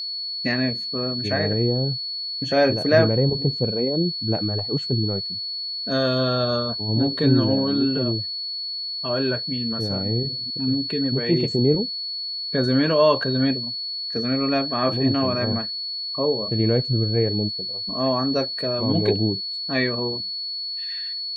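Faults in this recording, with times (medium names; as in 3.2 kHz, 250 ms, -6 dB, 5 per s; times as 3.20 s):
whine 4.4 kHz -27 dBFS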